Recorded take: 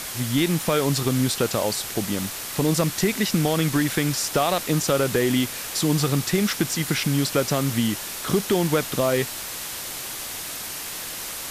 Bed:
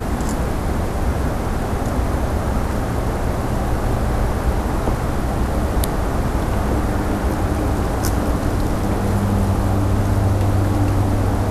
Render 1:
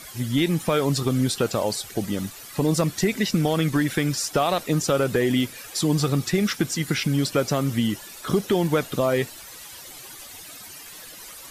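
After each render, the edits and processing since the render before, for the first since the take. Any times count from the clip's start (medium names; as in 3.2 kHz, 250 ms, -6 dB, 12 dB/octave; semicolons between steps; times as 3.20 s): noise reduction 13 dB, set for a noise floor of -33 dBFS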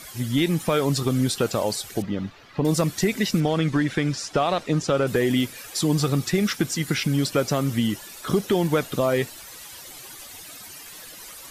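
2.02–2.65 s: distance through air 250 m; 3.40–5.07 s: distance through air 78 m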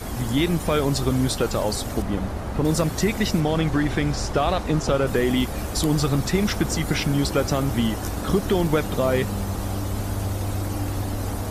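add bed -9.5 dB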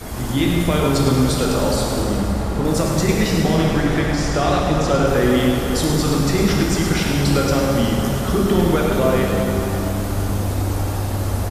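echo from a far wall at 18 m, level -7 dB; plate-style reverb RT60 3.5 s, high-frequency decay 0.75×, DRR -2 dB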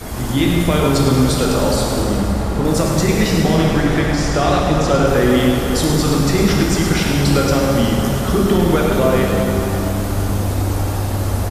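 trim +2.5 dB; peak limiter -3 dBFS, peak gain reduction 2 dB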